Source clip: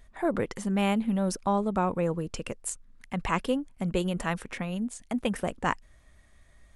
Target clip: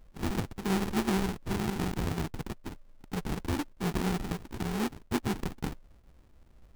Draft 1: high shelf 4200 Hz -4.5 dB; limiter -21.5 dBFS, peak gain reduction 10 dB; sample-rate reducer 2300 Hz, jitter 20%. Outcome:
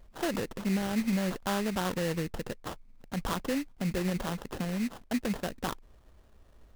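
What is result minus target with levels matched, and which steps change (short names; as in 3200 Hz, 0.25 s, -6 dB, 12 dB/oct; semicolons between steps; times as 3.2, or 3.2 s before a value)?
sample-rate reducer: distortion -15 dB
change: sample-rate reducer 590 Hz, jitter 20%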